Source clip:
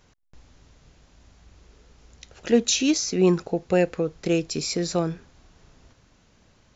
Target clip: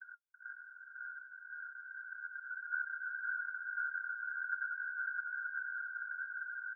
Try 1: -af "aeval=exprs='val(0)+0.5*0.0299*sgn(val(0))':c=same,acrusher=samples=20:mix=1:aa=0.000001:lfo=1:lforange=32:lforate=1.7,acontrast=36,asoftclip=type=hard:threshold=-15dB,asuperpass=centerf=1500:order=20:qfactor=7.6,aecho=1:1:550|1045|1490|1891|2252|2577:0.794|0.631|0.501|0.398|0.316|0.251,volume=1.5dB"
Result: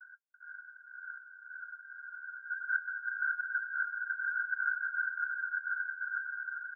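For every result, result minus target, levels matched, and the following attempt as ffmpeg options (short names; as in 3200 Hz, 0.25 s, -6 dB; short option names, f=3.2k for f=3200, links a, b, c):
decimation with a swept rate: distortion -8 dB; hard clip: distortion -7 dB
-af "aeval=exprs='val(0)+0.5*0.0299*sgn(val(0))':c=same,acrusher=samples=43:mix=1:aa=0.000001:lfo=1:lforange=68.8:lforate=1.7,acontrast=36,asoftclip=type=hard:threshold=-15dB,asuperpass=centerf=1500:order=20:qfactor=7.6,aecho=1:1:550|1045|1490|1891|2252|2577:0.794|0.631|0.501|0.398|0.316|0.251,volume=1.5dB"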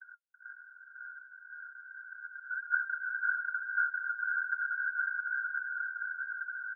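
hard clip: distortion -7 dB
-af "aeval=exprs='val(0)+0.5*0.0299*sgn(val(0))':c=same,acrusher=samples=43:mix=1:aa=0.000001:lfo=1:lforange=68.8:lforate=1.7,acontrast=36,asoftclip=type=hard:threshold=-24.5dB,asuperpass=centerf=1500:order=20:qfactor=7.6,aecho=1:1:550|1045|1490|1891|2252|2577:0.794|0.631|0.501|0.398|0.316|0.251,volume=1.5dB"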